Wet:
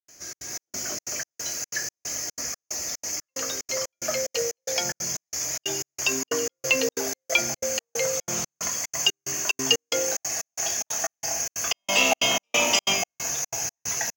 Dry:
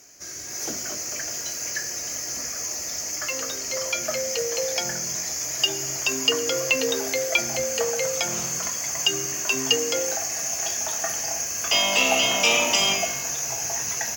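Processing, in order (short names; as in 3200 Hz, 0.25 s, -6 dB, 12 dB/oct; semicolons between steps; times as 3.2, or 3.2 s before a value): step gate ".xxx.xx." 183 bpm -60 dB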